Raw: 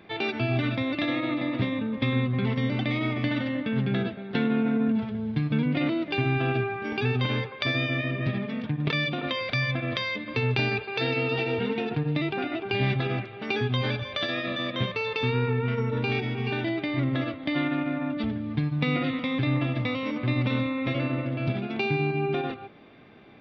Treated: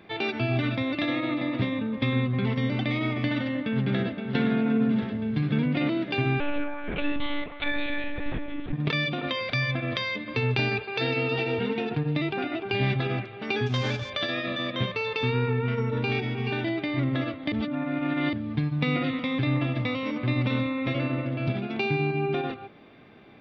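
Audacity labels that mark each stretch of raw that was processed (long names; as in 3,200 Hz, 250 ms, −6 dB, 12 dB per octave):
3.340000	4.340000	delay throw 520 ms, feedback 75%, level −7.5 dB
6.400000	8.730000	one-pitch LPC vocoder at 8 kHz 290 Hz
13.660000	14.100000	variable-slope delta modulation 32 kbit/s
17.520000	18.330000	reverse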